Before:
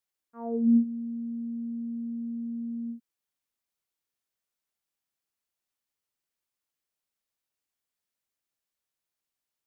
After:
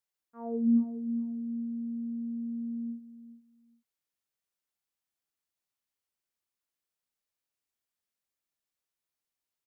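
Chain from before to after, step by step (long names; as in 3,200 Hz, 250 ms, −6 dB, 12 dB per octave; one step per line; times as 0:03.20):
repeating echo 416 ms, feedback 22%, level −14 dB
level −3 dB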